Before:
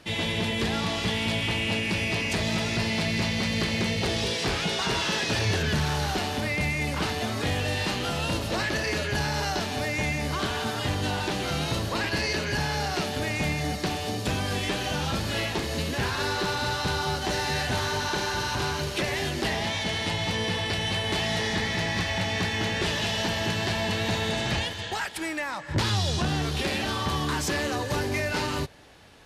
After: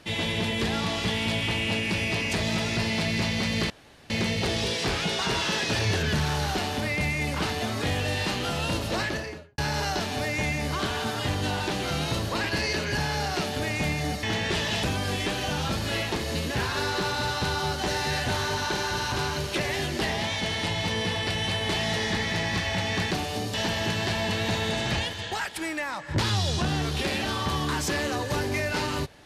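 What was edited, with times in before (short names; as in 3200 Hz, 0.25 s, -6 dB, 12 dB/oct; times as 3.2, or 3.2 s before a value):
3.7 insert room tone 0.40 s
8.58–9.18 studio fade out
13.83–14.26 swap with 22.54–23.14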